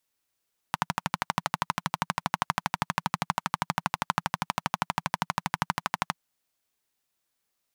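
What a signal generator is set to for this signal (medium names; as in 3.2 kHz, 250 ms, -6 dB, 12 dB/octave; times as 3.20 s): single-cylinder engine model, steady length 5.43 s, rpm 1500, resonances 170/940 Hz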